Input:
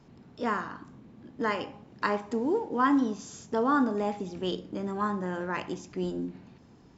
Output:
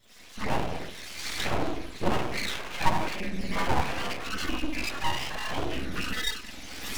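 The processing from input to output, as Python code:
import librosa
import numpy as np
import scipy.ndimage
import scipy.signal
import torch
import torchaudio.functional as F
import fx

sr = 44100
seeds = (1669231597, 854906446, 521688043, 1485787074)

p1 = fx.octave_mirror(x, sr, pivot_hz=700.0)
p2 = fx.recorder_agc(p1, sr, target_db=-24.0, rise_db_per_s=31.0, max_gain_db=30)
p3 = fx.low_shelf(p2, sr, hz=250.0, db=9.5)
p4 = fx.doubler(p3, sr, ms=48.0, db=-13.5)
p5 = p4 + fx.echo_filtered(p4, sr, ms=192, feedback_pct=67, hz=820.0, wet_db=-16.5, dry=0)
p6 = fx.room_shoebox(p5, sr, seeds[0], volume_m3=110.0, walls='mixed', distance_m=2.3)
p7 = fx.env_flanger(p6, sr, rest_ms=2.1, full_db=-15.0)
p8 = np.abs(p7)
p9 = fx.high_shelf(p8, sr, hz=3000.0, db=11.5)
y = p9 * 10.0 ** (-7.5 / 20.0)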